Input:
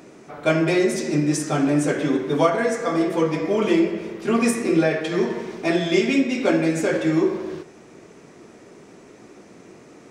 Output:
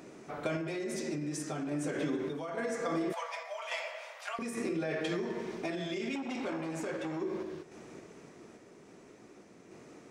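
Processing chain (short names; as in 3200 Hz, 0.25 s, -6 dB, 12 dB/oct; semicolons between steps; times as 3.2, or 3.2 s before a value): 3.13–4.39 steep high-pass 580 Hz 72 dB/oct; limiter -15 dBFS, peak gain reduction 9.5 dB; compressor, threshold -26 dBFS, peak gain reduction 7.5 dB; random-step tremolo; 6.15–7.22 core saturation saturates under 800 Hz; gain -3.5 dB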